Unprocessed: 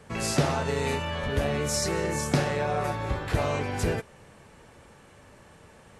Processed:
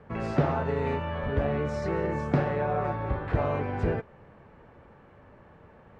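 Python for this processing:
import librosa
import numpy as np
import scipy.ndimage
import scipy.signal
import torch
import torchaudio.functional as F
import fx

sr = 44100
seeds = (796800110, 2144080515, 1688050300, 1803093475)

y = scipy.signal.sosfilt(scipy.signal.butter(2, 1600.0, 'lowpass', fs=sr, output='sos'), x)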